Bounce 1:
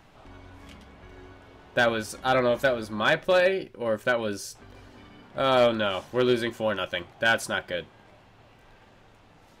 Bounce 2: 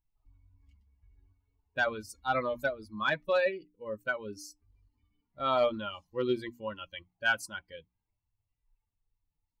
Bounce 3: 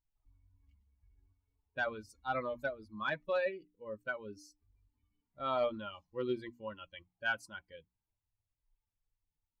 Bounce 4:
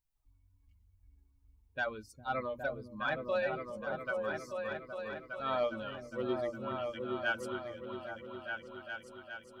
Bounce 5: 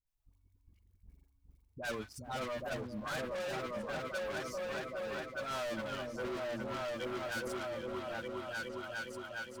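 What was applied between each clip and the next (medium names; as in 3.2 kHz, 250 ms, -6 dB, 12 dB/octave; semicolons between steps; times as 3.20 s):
expander on every frequency bin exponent 2; hum notches 60/120/180/240/300 Hz; dynamic bell 1.2 kHz, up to +5 dB, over -40 dBFS, Q 1.6; trim -5 dB
low-pass 3.4 kHz 6 dB/octave; trim -5.5 dB
treble shelf 8.3 kHz +5 dB; on a send: delay with an opening low-pass 409 ms, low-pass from 200 Hz, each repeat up 2 oct, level 0 dB
waveshaping leveller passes 2; saturation -38 dBFS, distortion -7 dB; phase dispersion highs, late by 66 ms, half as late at 670 Hz; trim +1 dB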